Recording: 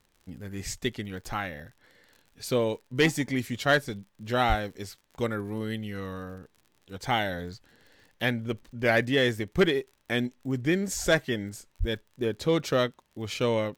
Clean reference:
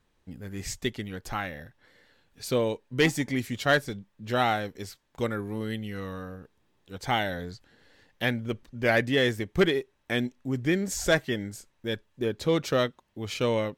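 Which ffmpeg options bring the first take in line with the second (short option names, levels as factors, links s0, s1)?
-filter_complex "[0:a]adeclick=t=4,asplit=3[s0][s1][s2];[s0]afade=t=out:st=4.48:d=0.02[s3];[s1]highpass=f=140:w=0.5412,highpass=f=140:w=1.3066,afade=t=in:st=4.48:d=0.02,afade=t=out:st=4.6:d=0.02[s4];[s2]afade=t=in:st=4.6:d=0.02[s5];[s3][s4][s5]amix=inputs=3:normalize=0,asplit=3[s6][s7][s8];[s6]afade=t=out:st=11.79:d=0.02[s9];[s7]highpass=f=140:w=0.5412,highpass=f=140:w=1.3066,afade=t=in:st=11.79:d=0.02,afade=t=out:st=11.91:d=0.02[s10];[s8]afade=t=in:st=11.91:d=0.02[s11];[s9][s10][s11]amix=inputs=3:normalize=0"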